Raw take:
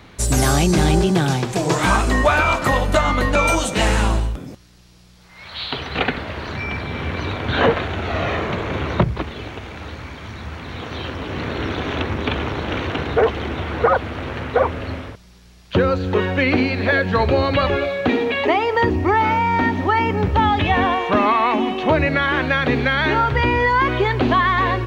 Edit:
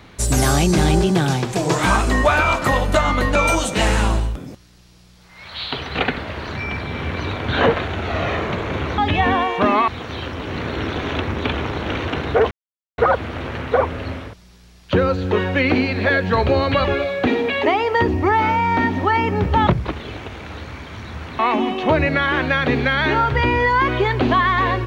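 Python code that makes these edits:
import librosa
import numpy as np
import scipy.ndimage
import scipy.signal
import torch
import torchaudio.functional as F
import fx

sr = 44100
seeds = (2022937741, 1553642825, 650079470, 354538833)

y = fx.edit(x, sr, fx.swap(start_s=8.98, length_s=1.72, other_s=20.49, other_length_s=0.9),
    fx.silence(start_s=13.33, length_s=0.47), tone=tone)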